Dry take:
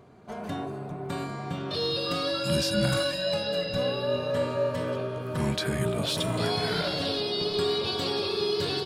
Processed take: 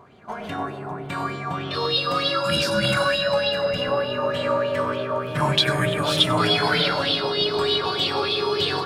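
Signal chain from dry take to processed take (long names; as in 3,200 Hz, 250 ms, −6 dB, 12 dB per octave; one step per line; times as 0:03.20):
0:03.69–0:04.32: parametric band 3,800 Hz −8.5 dB 0.27 octaves
0:05.27–0:06.88: comb filter 6.8 ms, depth 76%
bucket-brigade delay 374 ms, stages 4,096, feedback 79%, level −15 dB
convolution reverb RT60 0.35 s, pre-delay 87 ms, DRR 5 dB
auto-filter bell 3.3 Hz 930–3,400 Hz +16 dB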